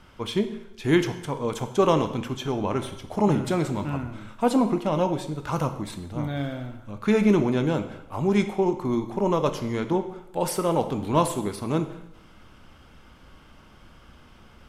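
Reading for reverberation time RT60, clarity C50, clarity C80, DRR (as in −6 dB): 0.85 s, 11.0 dB, 13.0 dB, 8.0 dB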